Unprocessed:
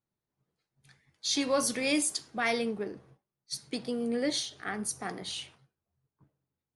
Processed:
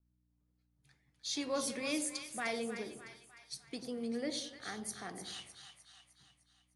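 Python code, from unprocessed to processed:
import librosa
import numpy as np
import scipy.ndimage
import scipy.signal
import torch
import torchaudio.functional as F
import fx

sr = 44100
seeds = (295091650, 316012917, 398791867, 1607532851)

y = fx.add_hum(x, sr, base_hz=60, snr_db=33)
y = fx.echo_split(y, sr, split_hz=860.0, low_ms=93, high_ms=304, feedback_pct=52, wet_db=-9.0)
y = fx.wow_flutter(y, sr, seeds[0], rate_hz=2.1, depth_cents=30.0)
y = y * librosa.db_to_amplitude(-8.5)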